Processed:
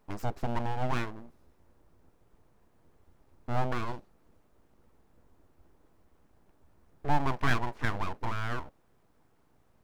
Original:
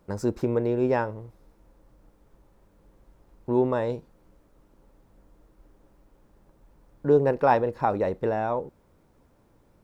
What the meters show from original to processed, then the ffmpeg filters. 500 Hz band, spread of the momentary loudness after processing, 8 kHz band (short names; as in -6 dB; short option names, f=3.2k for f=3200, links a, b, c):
-16.0 dB, 12 LU, n/a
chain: -af "aeval=exprs='abs(val(0))':c=same,bandreject=f=550:w=16,volume=-4dB"